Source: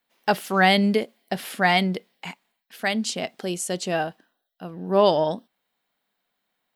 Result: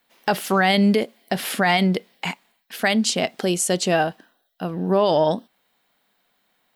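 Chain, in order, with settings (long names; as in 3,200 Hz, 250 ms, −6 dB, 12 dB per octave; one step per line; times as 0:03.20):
in parallel at 0 dB: downward compressor, threshold −32 dBFS, peak gain reduction 17.5 dB
on the sum: brickwall limiter −13 dBFS, peak gain reduction 7.5 dB
level +3.5 dB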